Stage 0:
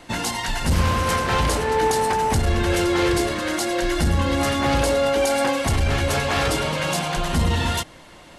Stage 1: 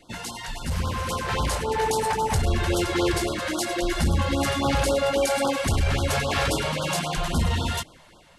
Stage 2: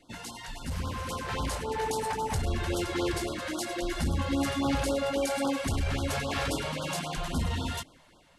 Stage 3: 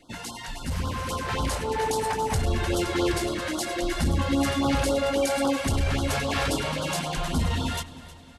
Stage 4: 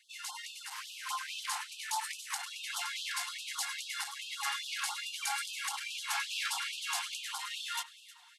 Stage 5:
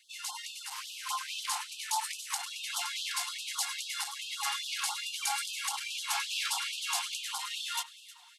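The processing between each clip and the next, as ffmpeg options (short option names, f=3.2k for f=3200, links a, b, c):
-af "dynaudnorm=f=510:g=5:m=7dB,afftfilt=real='re*(1-between(b*sr/1024,240*pow(2200/240,0.5+0.5*sin(2*PI*3.7*pts/sr))/1.41,240*pow(2200/240,0.5+0.5*sin(2*PI*3.7*pts/sr))*1.41))':imag='im*(1-between(b*sr/1024,240*pow(2200/240,0.5+0.5*sin(2*PI*3.7*pts/sr))/1.41,240*pow(2200/240,0.5+0.5*sin(2*PI*3.7*pts/sr))*1.41))':win_size=1024:overlap=0.75,volume=-8.5dB"
-af "equalizer=f=270:w=7.3:g=7.5,volume=-7dB"
-af "aecho=1:1:312|624|936|1248:0.141|0.0692|0.0339|0.0166,volume=4.5dB"
-af "afftfilt=real='re*gte(b*sr/1024,710*pow(2500/710,0.5+0.5*sin(2*PI*2.4*pts/sr)))':imag='im*gte(b*sr/1024,710*pow(2500/710,0.5+0.5*sin(2*PI*2.4*pts/sr)))':win_size=1024:overlap=0.75,volume=-3.5dB"
-af "equalizer=f=1.7k:t=o:w=0.81:g=-7,volume=4dB"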